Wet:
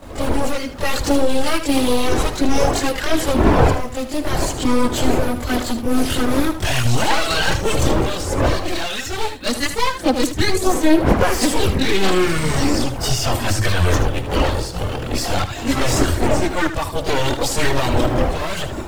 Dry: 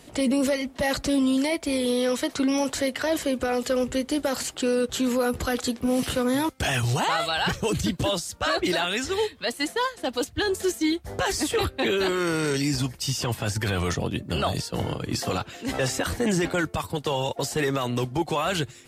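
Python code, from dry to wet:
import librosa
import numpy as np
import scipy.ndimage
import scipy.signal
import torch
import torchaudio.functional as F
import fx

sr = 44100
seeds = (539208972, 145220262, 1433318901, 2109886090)

p1 = np.minimum(x, 2.0 * 10.0 ** (-26.5 / 20.0) - x)
p2 = fx.dmg_wind(p1, sr, seeds[0], corner_hz=600.0, level_db=-28.0)
p3 = fx.recorder_agc(p2, sr, target_db=-8.5, rise_db_per_s=7.3, max_gain_db=30)
p4 = fx.quant_dither(p3, sr, seeds[1], bits=6, dither='none')
p5 = p3 + (p4 * librosa.db_to_amplitude(-7.0))
p6 = fx.chorus_voices(p5, sr, voices=6, hz=0.75, base_ms=23, depth_ms=2.0, mix_pct=70)
p7 = p6 + fx.echo_single(p6, sr, ms=77, db=-10.5, dry=0)
y = p7 * librosa.db_to_amplitude(-1.0)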